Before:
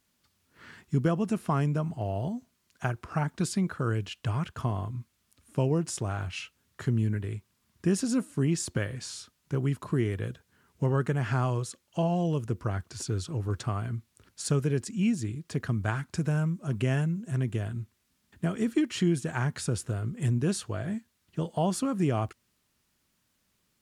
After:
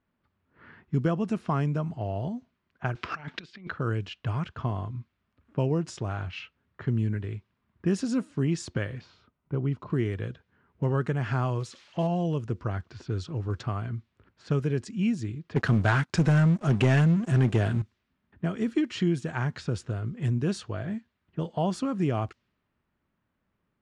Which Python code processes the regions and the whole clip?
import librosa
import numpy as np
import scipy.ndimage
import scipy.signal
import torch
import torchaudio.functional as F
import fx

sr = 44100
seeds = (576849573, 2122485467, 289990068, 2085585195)

y = fx.chain(x, sr, fx.weighting(curve='D'),
    fx.over_compress(threshold_db=-36.0, ratio=-0.5), at=(2.95, 3.71))
y = fx.chain(y, sr, fx.lowpass(hz=6200.0, slope=12),
    fx.high_shelf(hz=2100.0, db=-8.5),
    fx.notch(hz=1700.0, q=6.6), at=(9.01, 9.9))
y = fx.chain(y, sr, fx.crossing_spikes(level_db=-32.5),
    fx.high_shelf(hz=6400.0, db=-4.5), at=(11.6, 12.07))
y = fx.chain(y, sr, fx.highpass(hz=140.0, slope=6),
    fx.leveller(passes=3), at=(15.56, 17.82))
y = scipy.signal.sosfilt(scipy.signal.butter(2, 5300.0, 'lowpass', fs=sr, output='sos'), y)
y = fx.env_lowpass(y, sr, base_hz=1600.0, full_db=-24.0)